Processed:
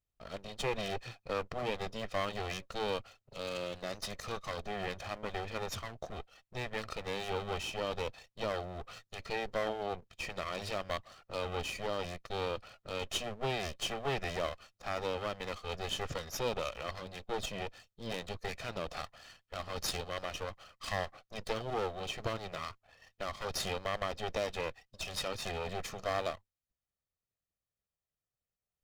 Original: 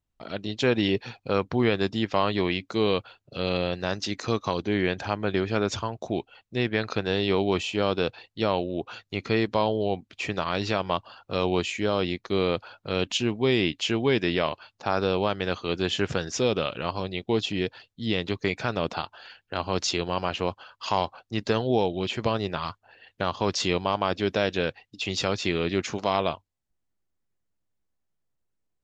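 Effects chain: comb filter that takes the minimum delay 1.6 ms; trim -6.5 dB

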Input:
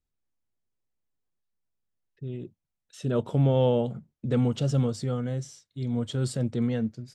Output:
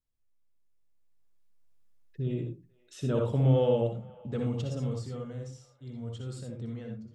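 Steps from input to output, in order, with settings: Doppler pass-by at 1.83 s, 8 m/s, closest 4.7 m; feedback echo behind a band-pass 490 ms, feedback 45%, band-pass 1.3 kHz, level -20 dB; on a send at -2 dB: reverberation RT60 0.25 s, pre-delay 60 ms; on the sum: trim +4.5 dB

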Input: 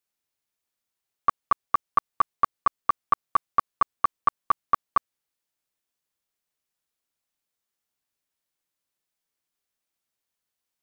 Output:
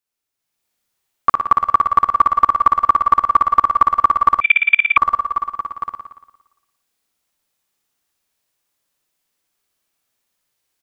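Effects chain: multi-tap echo 344/405/859 ms -15.5/-14.5/-12.5 dB; level rider gain up to 9 dB; flutter echo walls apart 9.9 m, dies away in 1 s; reverberation RT60 0.85 s, pre-delay 71 ms, DRR 21 dB; 4.41–4.97 s: frequency inversion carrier 3.5 kHz; trim -1 dB

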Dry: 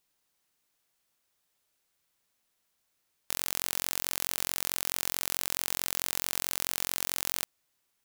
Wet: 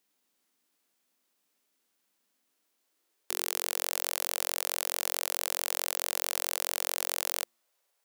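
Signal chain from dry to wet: de-hum 114.7 Hz, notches 3; formant shift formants -5 st; high-pass sweep 240 Hz -> 530 Hz, 2.37–3.92 s

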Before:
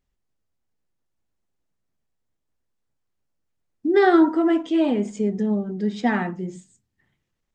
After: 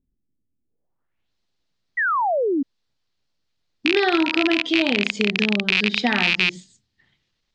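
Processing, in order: rattle on loud lows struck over -36 dBFS, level -12 dBFS; treble shelf 2.1 kHz +8.5 dB; compression 6:1, threshold -18 dBFS, peak gain reduction 8 dB; low-pass sweep 270 Hz -> 4.3 kHz, 0.62–1.32 s; painted sound fall, 1.97–2.63 s, 260–2000 Hz -22 dBFS; trim +1.5 dB

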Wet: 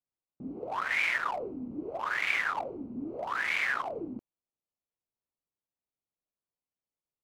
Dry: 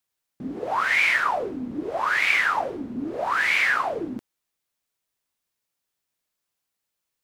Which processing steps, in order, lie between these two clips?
local Wiener filter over 25 samples; trim -7 dB

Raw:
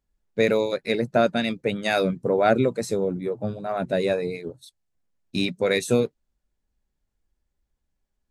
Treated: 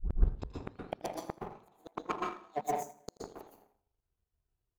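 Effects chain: tape start-up on the opening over 2.02 s; in parallel at +1.5 dB: peak limiter -14 dBFS, peak gain reduction 8 dB; on the sum: compression 3:1, threshold -18 dBFS, peak gain reduction 7 dB; comb of notches 160 Hz; inverted gate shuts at -17 dBFS, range -37 dB; speed mistake 45 rpm record played at 78 rpm; on a send: feedback delay 82 ms, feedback 47%, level -15 dB; on the sum: plate-style reverb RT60 0.61 s, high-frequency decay 0.55×, pre-delay 110 ms, DRR -4.5 dB; power-law waveshaper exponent 1.4; trim -1.5 dB

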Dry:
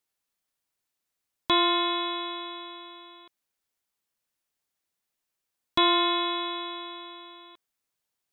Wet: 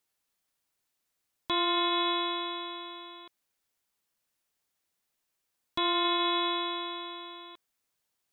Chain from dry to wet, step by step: peak limiter -21.5 dBFS, peak gain reduction 10.5 dB; trim +2.5 dB

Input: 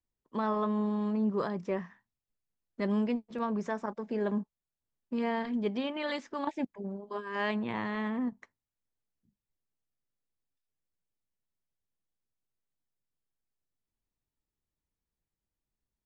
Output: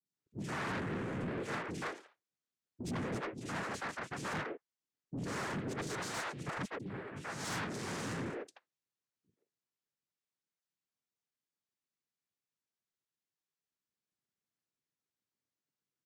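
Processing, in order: 3.40–4.33 s: cycle switcher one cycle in 2, inverted; noise-vocoded speech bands 3; peaking EQ 3.5 kHz +3.5 dB 1.4 oct; three bands offset in time lows, highs, mids 50/130 ms, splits 360/3300 Hz; saturation -32 dBFS, distortion -10 dB; trim -2 dB

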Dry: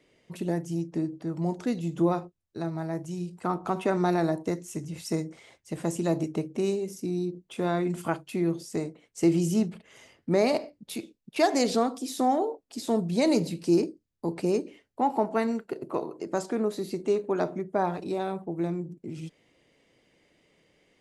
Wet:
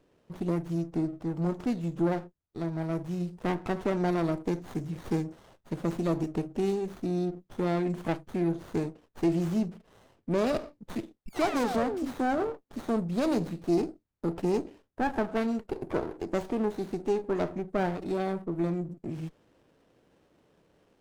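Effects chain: in parallel at -1 dB: gain riding within 5 dB 0.5 s; on the sum: saturation -9 dBFS, distortion -23 dB; painted sound fall, 11.26–12.12 s, 240–2700 Hz -26 dBFS; sliding maximum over 17 samples; trim -6.5 dB

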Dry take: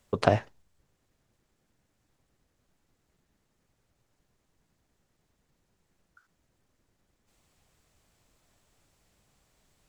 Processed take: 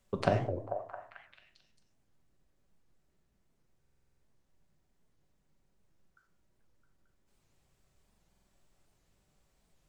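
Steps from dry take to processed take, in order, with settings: bass shelf 170 Hz +4.5 dB; repeats whose band climbs or falls 221 ms, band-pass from 410 Hz, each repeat 0.7 oct, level -4 dB; simulated room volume 680 m³, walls furnished, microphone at 1.1 m; buffer glitch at 3.81/8.05 s, samples 2048, times 8; warped record 78 rpm, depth 250 cents; trim -7.5 dB

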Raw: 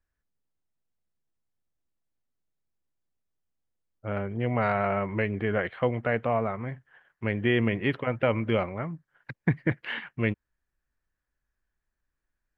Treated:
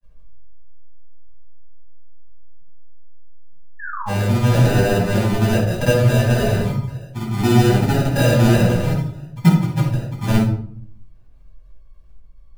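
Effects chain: companding laws mixed up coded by mu; spectral gate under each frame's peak -20 dB strong; bass shelf 170 Hz +9 dB; band-stop 1.9 kHz, Q 5.8; in parallel at +0.5 dB: compression, threshold -42 dBFS, peak gain reduction 25 dB; on the sum: granulator, pitch spread up and down by 0 st; sample-and-hold 40×; painted sound fall, 3.79–4.11 s, 740–1800 Hz -35 dBFS; simulated room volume 800 m³, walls furnished, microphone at 8.8 m; trim -5 dB

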